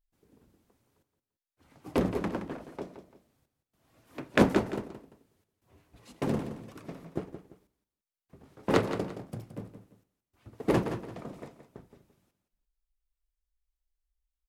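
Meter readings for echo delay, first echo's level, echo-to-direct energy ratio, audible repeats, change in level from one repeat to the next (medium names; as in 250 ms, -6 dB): 171 ms, -10.5 dB, -10.0 dB, 2, -10.5 dB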